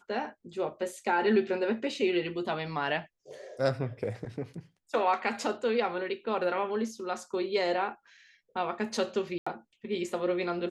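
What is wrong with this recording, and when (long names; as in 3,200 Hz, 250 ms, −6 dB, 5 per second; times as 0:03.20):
0:09.38–0:09.46: drop-out 85 ms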